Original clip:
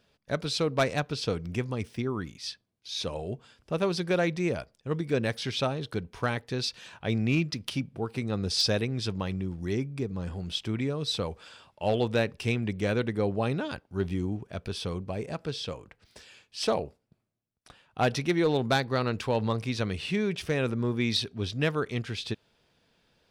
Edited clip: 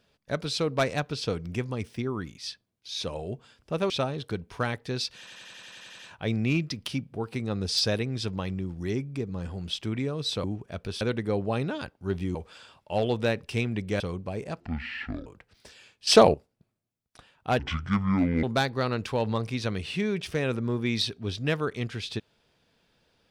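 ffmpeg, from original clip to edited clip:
-filter_complex "[0:a]asplit=21[a][b][c][d][e][f][g][h][i][j][k][l][m][n][o][p][q][r][s][t][u];[a]atrim=end=3.902[v];[b]atrim=start=5.528:end=6.902[w];[c]atrim=start=6.808:end=6.902[x];[d]atrim=start=6.808:end=6.902[y];[e]atrim=start=6.808:end=6.902[z];[f]atrim=start=6.808:end=6.902[aa];[g]atrim=start=6.808:end=6.902[ab];[h]atrim=start=6.808:end=6.902[ac];[i]atrim=start=6.808:end=6.902[ad];[j]atrim=start=6.808:end=6.902[ae];[k]atrim=start=6.808:end=11.262[af];[l]atrim=start=14.248:end=14.822[ag];[m]atrim=start=12.908:end=14.252[ah];[n]atrim=start=11.258:end=12.912[ai];[o]atrim=start=14.818:end=15.424[aj];[p]atrim=start=15.42:end=15.77,asetpts=PTS-STARTPTS,asetrate=23373,aresample=44100[ak];[q]atrim=start=15.766:end=16.582[al];[r]atrim=start=16.578:end=16.852,asetpts=PTS-STARTPTS,volume=11dB[am];[s]atrim=start=16.848:end=18.104[an];[t]atrim=start=18.1:end=18.58,asetpts=PTS-STARTPTS,asetrate=25137,aresample=44100[ao];[u]atrim=start=18.576[ap];[v][w]acrossfade=d=0.004:c1=hsin:c2=hsin[aq];[aq][x]acrossfade=d=0.004:c1=hsin:c2=hsin[ar];[ar][y]acrossfade=d=0.004:c1=hsin:c2=hsin[as];[as][z]acrossfade=d=0.004:c1=hsin:c2=hsin[at];[at][aa]acrossfade=d=0.004:c1=hsin:c2=hsin[au];[au][ab]acrossfade=d=0.004:c1=hsin:c2=hsin[av];[av][ac]acrossfade=d=0.004:c1=hsin:c2=hsin[aw];[aw][ad]acrossfade=d=0.004:c1=hsin:c2=hsin[ax];[ax][ae]acrossfade=d=0.004:c1=hsin:c2=hsin[ay];[ay][af]acrossfade=d=0.004:c1=hsin:c2=hsin[az];[az][ag]acrossfade=d=0.004:c1=hsin:c2=hsin[ba];[ba][ah]acrossfade=d=0.004:c1=hsin:c2=hsin[bb];[bb][ai]acrossfade=d=0.004:c1=hsin:c2=hsin[bc];[bc][aj]acrossfade=d=0.004:c1=hsin:c2=hsin[bd];[bd][ak]acrossfade=d=0.004:c1=hsin:c2=hsin[be];[be][al]acrossfade=d=0.004:c1=hsin:c2=hsin[bf];[bf][am]acrossfade=d=0.004:c1=hsin:c2=hsin[bg];[bg][an]acrossfade=d=0.004:c1=hsin:c2=hsin[bh];[bh][ao]acrossfade=d=0.004:c1=hsin:c2=hsin[bi];[bi][ap]acrossfade=d=0.004:c1=hsin:c2=hsin"

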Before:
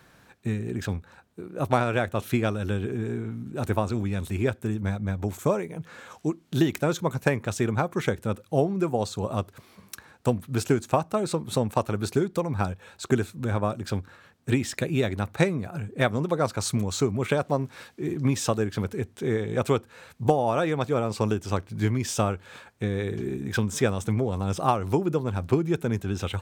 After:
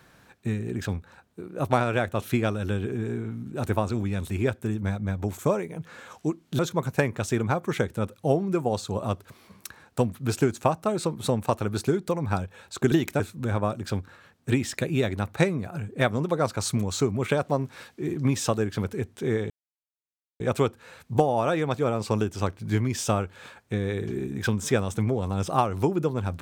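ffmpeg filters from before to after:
-filter_complex "[0:a]asplit=5[a][b][c][d][e];[a]atrim=end=6.592[f];[b]atrim=start=6.868:end=13.202[g];[c]atrim=start=6.588:end=6.872[h];[d]atrim=start=13.198:end=19.5,asetpts=PTS-STARTPTS,afade=t=out:st=6.298:d=0.004:c=hsin,apad=pad_dur=0.9[i];[e]atrim=start=19.5,asetpts=PTS-STARTPTS,afade=t=in:d=0.004:c=hsin[j];[f][g]acrossfade=d=0.004:c1=hsin:c2=hsin[k];[k][h]acrossfade=d=0.004:c1=hsin:c2=hsin[l];[i][j]concat=n=2:v=0:a=1[m];[l][m]acrossfade=d=0.004:c1=hsin:c2=hsin"

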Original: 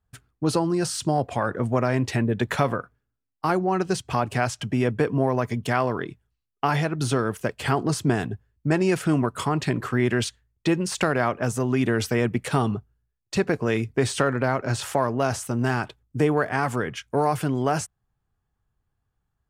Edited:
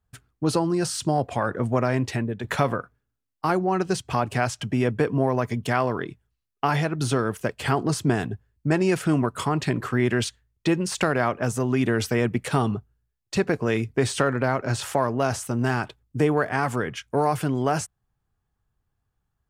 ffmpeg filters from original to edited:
-filter_complex "[0:a]asplit=2[a][b];[a]atrim=end=2.44,asetpts=PTS-STARTPTS,afade=t=out:st=1.79:d=0.65:c=qsin:silence=0.334965[c];[b]atrim=start=2.44,asetpts=PTS-STARTPTS,afade=t=in:d=0.004:c=hsin:silence=0.334965[d];[c][d]concat=n=2:v=0:a=1"

